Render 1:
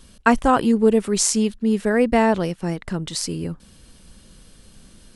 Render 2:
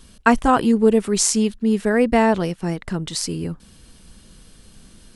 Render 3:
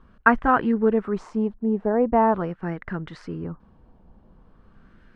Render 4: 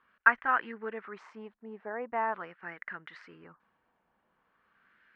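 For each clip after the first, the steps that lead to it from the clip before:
notch 550 Hz, Q 12; gain +1 dB
LFO low-pass sine 0.43 Hz 820–1700 Hz; gain -5.5 dB
band-pass 2000 Hz, Q 1.8

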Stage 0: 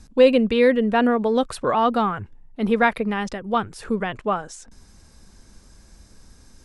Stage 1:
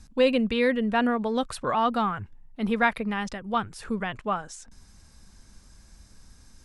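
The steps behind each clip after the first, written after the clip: bell 420 Hz -6 dB 1.4 oct; gain -2.5 dB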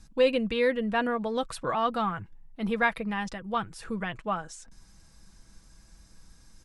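comb 6.1 ms, depth 38%; gain -3 dB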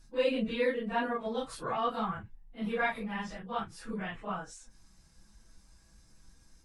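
phase scrambler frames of 0.1 s; gain -5 dB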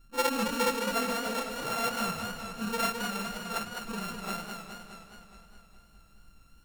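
sample sorter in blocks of 32 samples; warbling echo 0.208 s, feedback 65%, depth 87 cents, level -6 dB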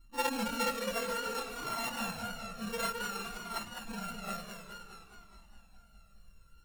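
cascading flanger falling 0.56 Hz

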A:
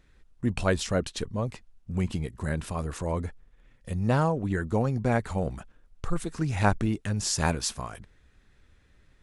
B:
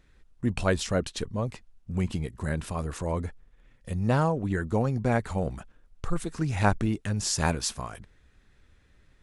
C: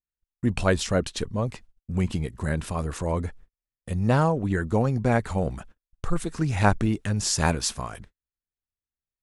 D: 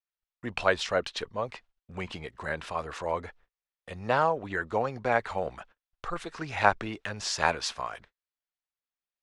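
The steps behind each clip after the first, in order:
nothing audible
gate -48 dBFS, range -42 dB; gain +3 dB
three-band isolator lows -18 dB, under 480 Hz, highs -20 dB, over 5000 Hz; gain +1.5 dB

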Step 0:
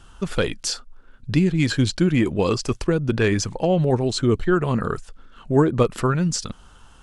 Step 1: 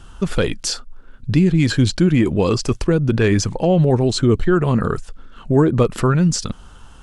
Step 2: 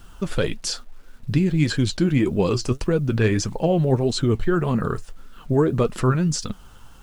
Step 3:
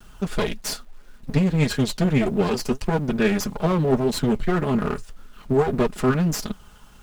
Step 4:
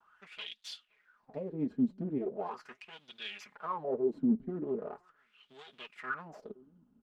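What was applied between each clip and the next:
in parallel at +2 dB: limiter -16 dBFS, peak gain reduction 11 dB; on the sum: low shelf 440 Hz +4 dB; gain -3.5 dB
bit-crush 9-bit; flange 1.7 Hz, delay 3.9 ms, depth 5.7 ms, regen +62%
minimum comb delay 4.8 ms
outdoor echo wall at 89 m, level -28 dB; wah 0.4 Hz 240–3500 Hz, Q 6.3; gain -2.5 dB

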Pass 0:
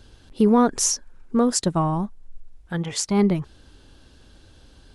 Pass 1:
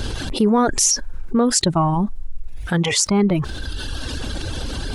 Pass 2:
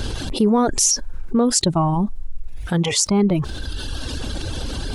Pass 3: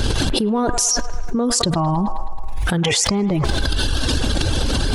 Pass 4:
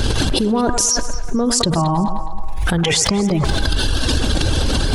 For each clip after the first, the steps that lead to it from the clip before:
reverb removal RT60 1.1 s; fast leveller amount 70%
dynamic EQ 1700 Hz, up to -6 dB, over -39 dBFS, Q 1.3
band-limited delay 0.106 s, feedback 63%, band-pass 1200 Hz, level -10.5 dB; fast leveller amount 100%; gain -4.5 dB
echo with dull and thin repeats by turns 0.112 s, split 1400 Hz, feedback 52%, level -11 dB; gain +1.5 dB

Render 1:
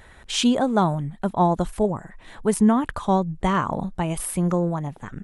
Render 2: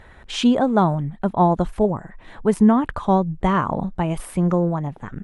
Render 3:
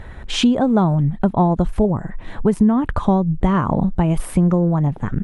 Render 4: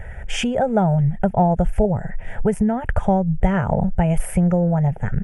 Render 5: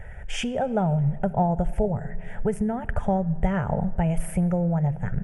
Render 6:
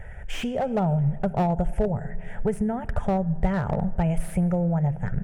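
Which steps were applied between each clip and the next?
LPF 2200 Hz 6 dB/oct; gain +3 dB
low shelf 320 Hz +9 dB; compressor 4:1, threshold -18 dBFS, peak gain reduction 11.5 dB; gain +4.5 dB
fixed phaser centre 1100 Hz, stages 6; gain +3 dB
shoebox room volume 3200 m³, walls mixed, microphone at 0.37 m; gain -6 dB
slew limiter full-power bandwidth 68 Hz

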